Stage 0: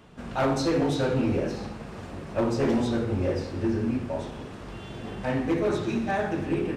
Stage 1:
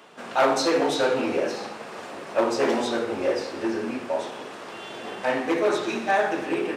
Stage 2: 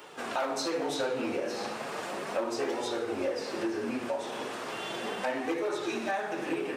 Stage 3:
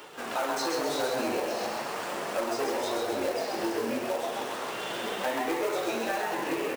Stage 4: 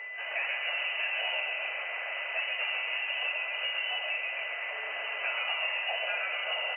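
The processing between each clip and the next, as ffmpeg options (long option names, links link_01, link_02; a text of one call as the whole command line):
ffmpeg -i in.wav -af "highpass=460,volume=7dB" out.wav
ffmpeg -i in.wav -af "highshelf=frequency=9600:gain=8,acompressor=threshold=-31dB:ratio=5,flanger=delay=2.2:depth=6.5:regen=-41:speed=0.35:shape=sinusoidal,volume=5dB" out.wav
ffmpeg -i in.wav -filter_complex "[0:a]areverse,acompressor=mode=upward:threshold=-38dB:ratio=2.5,areverse,acrusher=bits=3:mode=log:mix=0:aa=0.000001,asplit=9[link_01][link_02][link_03][link_04][link_05][link_06][link_07][link_08][link_09];[link_02]adelay=132,afreqshift=120,volume=-4dB[link_10];[link_03]adelay=264,afreqshift=240,volume=-8.7dB[link_11];[link_04]adelay=396,afreqshift=360,volume=-13.5dB[link_12];[link_05]adelay=528,afreqshift=480,volume=-18.2dB[link_13];[link_06]adelay=660,afreqshift=600,volume=-22.9dB[link_14];[link_07]adelay=792,afreqshift=720,volume=-27.7dB[link_15];[link_08]adelay=924,afreqshift=840,volume=-32.4dB[link_16];[link_09]adelay=1056,afreqshift=960,volume=-37.1dB[link_17];[link_01][link_10][link_11][link_12][link_13][link_14][link_15][link_16][link_17]amix=inputs=9:normalize=0" out.wav
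ffmpeg -i in.wav -af "lowpass=frequency=2700:width_type=q:width=0.5098,lowpass=frequency=2700:width_type=q:width=0.6013,lowpass=frequency=2700:width_type=q:width=0.9,lowpass=frequency=2700:width_type=q:width=2.563,afreqshift=-3200,aeval=exprs='val(0)+0.0178*sin(2*PI*2000*n/s)':channel_layout=same,highpass=frequency=620:width_type=q:width=4.9,volume=-4dB" out.wav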